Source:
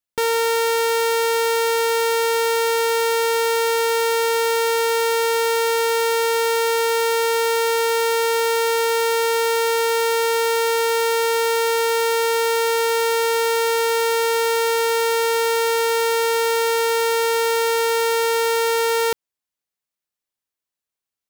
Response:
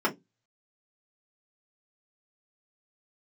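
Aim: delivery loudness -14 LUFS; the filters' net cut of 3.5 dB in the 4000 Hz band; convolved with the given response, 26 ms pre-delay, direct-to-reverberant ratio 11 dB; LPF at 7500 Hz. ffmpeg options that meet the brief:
-filter_complex "[0:a]lowpass=7.5k,equalizer=f=4k:t=o:g=-4,asplit=2[a][b];[1:a]atrim=start_sample=2205,adelay=26[c];[b][c]afir=irnorm=-1:irlink=0,volume=-23dB[d];[a][d]amix=inputs=2:normalize=0,volume=4dB"

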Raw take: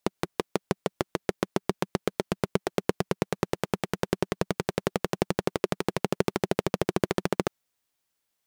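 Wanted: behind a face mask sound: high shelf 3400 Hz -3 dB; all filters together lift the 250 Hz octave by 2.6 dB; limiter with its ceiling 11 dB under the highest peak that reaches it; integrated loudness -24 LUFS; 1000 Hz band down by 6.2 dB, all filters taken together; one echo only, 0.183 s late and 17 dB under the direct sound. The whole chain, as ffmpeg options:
-af "equalizer=f=250:t=o:g=4.5,equalizer=f=1k:t=o:g=-8.5,alimiter=limit=-18dB:level=0:latency=1,highshelf=f=3.4k:g=-3,aecho=1:1:183:0.141,volume=14.5dB"

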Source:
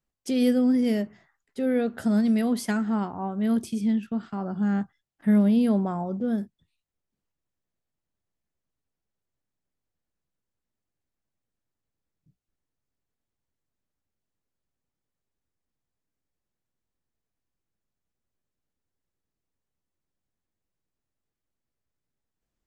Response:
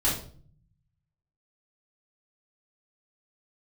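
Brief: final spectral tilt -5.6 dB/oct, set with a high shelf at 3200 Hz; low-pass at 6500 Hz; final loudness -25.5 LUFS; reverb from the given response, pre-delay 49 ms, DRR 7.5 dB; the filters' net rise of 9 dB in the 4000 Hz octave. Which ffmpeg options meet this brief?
-filter_complex "[0:a]lowpass=6.5k,highshelf=f=3.2k:g=6.5,equalizer=f=4k:t=o:g=7.5,asplit=2[a][b];[1:a]atrim=start_sample=2205,adelay=49[c];[b][c]afir=irnorm=-1:irlink=0,volume=-18dB[d];[a][d]amix=inputs=2:normalize=0,volume=-1.5dB"

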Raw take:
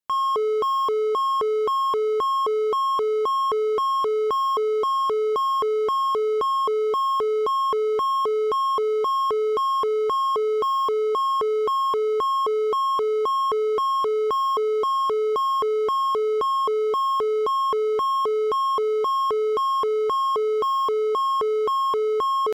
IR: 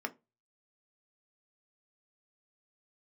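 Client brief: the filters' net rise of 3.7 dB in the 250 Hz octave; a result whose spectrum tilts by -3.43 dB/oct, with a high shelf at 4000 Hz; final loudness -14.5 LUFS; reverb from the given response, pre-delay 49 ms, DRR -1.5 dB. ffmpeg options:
-filter_complex "[0:a]equalizer=f=250:t=o:g=7,highshelf=f=4k:g=5.5,asplit=2[a][b];[1:a]atrim=start_sample=2205,adelay=49[c];[b][c]afir=irnorm=-1:irlink=0,volume=-1dB[d];[a][d]amix=inputs=2:normalize=0,volume=1dB"

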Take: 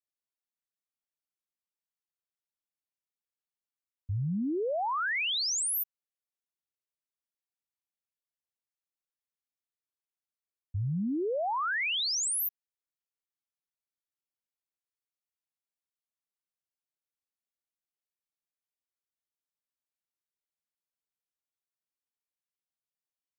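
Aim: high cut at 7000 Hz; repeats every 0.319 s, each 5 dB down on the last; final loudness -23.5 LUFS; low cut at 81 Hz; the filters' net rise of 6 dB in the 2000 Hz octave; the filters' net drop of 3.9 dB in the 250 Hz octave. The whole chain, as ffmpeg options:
-af "highpass=81,lowpass=7k,equalizer=f=250:t=o:g=-5.5,equalizer=f=2k:t=o:g=7.5,aecho=1:1:319|638|957|1276|1595|1914|2233:0.562|0.315|0.176|0.0988|0.0553|0.031|0.0173,volume=4.5dB"

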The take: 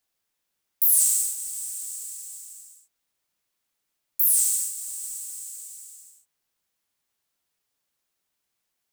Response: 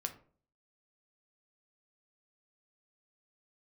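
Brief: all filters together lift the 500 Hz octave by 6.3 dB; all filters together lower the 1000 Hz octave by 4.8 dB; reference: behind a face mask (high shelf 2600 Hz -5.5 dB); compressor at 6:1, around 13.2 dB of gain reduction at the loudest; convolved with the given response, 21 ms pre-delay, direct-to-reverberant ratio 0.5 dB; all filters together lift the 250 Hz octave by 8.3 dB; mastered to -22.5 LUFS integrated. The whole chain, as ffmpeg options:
-filter_complex "[0:a]equalizer=f=250:t=o:g=7.5,equalizer=f=500:t=o:g=8,equalizer=f=1k:t=o:g=-7.5,acompressor=threshold=-30dB:ratio=6,asplit=2[a][b];[1:a]atrim=start_sample=2205,adelay=21[c];[b][c]afir=irnorm=-1:irlink=0,volume=0dB[d];[a][d]amix=inputs=2:normalize=0,highshelf=f=2.6k:g=-5.5,volume=12.5dB"

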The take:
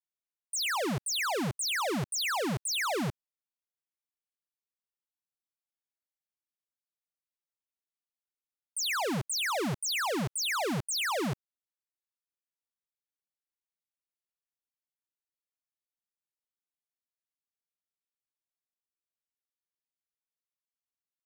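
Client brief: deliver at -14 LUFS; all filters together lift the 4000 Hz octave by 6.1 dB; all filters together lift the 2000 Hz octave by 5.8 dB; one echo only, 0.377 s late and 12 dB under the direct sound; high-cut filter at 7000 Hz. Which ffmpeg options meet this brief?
-af "lowpass=7k,equalizer=f=2k:t=o:g=5.5,equalizer=f=4k:t=o:g=6.5,aecho=1:1:377:0.251,volume=12.5dB"

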